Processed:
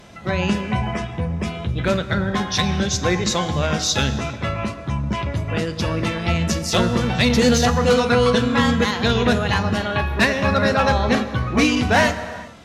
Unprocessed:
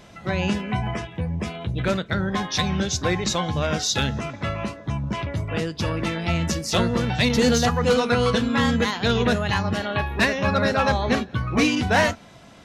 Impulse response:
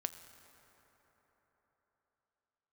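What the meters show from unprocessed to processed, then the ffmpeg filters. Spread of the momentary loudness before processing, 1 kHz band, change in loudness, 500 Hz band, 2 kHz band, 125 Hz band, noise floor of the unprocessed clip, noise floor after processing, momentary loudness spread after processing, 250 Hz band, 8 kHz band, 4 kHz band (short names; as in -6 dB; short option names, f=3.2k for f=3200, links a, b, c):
9 LU, +3.0 dB, +3.0 dB, +3.5 dB, +3.0 dB, +3.0 dB, -46 dBFS, -33 dBFS, 9 LU, +3.0 dB, +3.0 dB, +3.0 dB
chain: -filter_complex "[1:a]atrim=start_sample=2205,afade=t=out:st=0.42:d=0.01,atrim=end_sample=18963,asetrate=37044,aresample=44100[a];[0:a][a]afir=irnorm=-1:irlink=0,volume=3dB"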